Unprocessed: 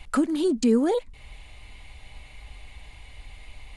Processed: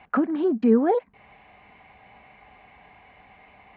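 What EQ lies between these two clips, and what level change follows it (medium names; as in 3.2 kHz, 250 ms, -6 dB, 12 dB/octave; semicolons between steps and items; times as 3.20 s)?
cabinet simulation 160–2400 Hz, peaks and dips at 200 Hz +9 dB, 430 Hz +4 dB, 740 Hz +10 dB, 1.1 kHz +5 dB, 1.6 kHz +5 dB; -1.5 dB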